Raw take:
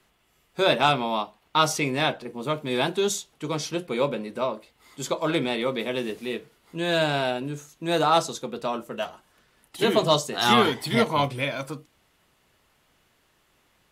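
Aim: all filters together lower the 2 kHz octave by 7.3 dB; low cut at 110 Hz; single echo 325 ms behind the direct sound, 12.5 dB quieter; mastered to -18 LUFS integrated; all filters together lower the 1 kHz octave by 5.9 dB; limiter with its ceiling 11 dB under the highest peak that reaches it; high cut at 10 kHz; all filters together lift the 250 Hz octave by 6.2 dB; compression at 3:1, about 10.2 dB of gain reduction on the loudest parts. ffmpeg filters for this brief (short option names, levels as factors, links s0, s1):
-af "highpass=110,lowpass=10000,equalizer=f=250:t=o:g=8.5,equalizer=f=1000:t=o:g=-6.5,equalizer=f=2000:t=o:g=-8,acompressor=threshold=0.0447:ratio=3,alimiter=level_in=1.12:limit=0.0631:level=0:latency=1,volume=0.891,aecho=1:1:325:0.237,volume=6.68"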